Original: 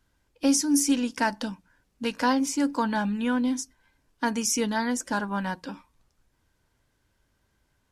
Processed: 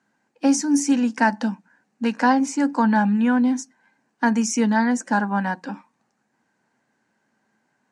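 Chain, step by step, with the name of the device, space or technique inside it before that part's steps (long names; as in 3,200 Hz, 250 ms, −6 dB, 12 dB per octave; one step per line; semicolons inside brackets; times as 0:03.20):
television speaker (loudspeaker in its box 160–8,100 Hz, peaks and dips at 220 Hz +9 dB, 790 Hz +9 dB, 1,700 Hz +6 dB, 3,400 Hz −9 dB, 5,100 Hz −5 dB)
level +2 dB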